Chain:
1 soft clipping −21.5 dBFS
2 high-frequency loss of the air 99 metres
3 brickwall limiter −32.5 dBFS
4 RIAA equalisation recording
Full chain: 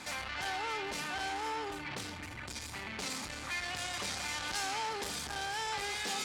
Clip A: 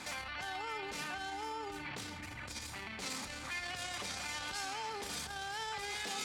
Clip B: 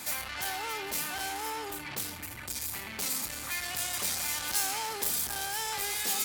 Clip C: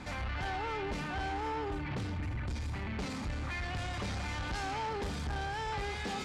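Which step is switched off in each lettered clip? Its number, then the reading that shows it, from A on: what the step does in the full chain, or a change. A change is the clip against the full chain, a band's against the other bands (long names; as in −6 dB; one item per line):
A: 1, distortion level −9 dB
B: 2, 8 kHz band +9.5 dB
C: 4, 125 Hz band +14.0 dB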